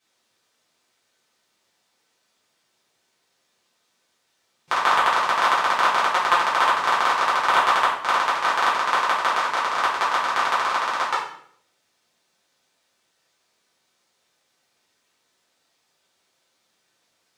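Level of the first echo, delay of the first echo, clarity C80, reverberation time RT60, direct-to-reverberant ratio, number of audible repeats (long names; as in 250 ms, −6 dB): no echo audible, no echo audible, 7.5 dB, 0.65 s, −9.0 dB, no echo audible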